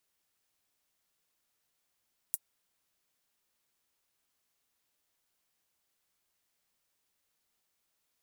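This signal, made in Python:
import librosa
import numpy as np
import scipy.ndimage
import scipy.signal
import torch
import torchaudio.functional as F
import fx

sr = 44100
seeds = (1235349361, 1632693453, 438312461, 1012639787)

y = fx.drum_hat(sr, length_s=0.24, from_hz=9300.0, decay_s=0.05)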